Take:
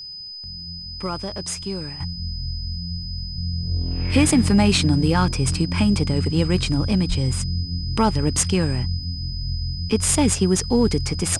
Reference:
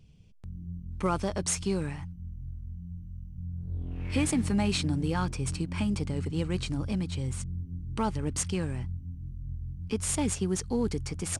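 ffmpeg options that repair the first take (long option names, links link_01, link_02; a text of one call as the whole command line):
ffmpeg -i in.wav -filter_complex "[0:a]adeclick=threshold=4,bandreject=frequency=5000:width=30,asplit=3[link_01][link_02][link_03];[link_01]afade=type=out:start_time=7.08:duration=0.02[link_04];[link_02]highpass=frequency=140:width=0.5412,highpass=frequency=140:width=1.3066,afade=type=in:start_time=7.08:duration=0.02,afade=type=out:start_time=7.2:duration=0.02[link_05];[link_03]afade=type=in:start_time=7.2:duration=0.02[link_06];[link_04][link_05][link_06]amix=inputs=3:normalize=0,asetnsamples=nb_out_samples=441:pad=0,asendcmd='2 volume volume -10.5dB',volume=0dB" out.wav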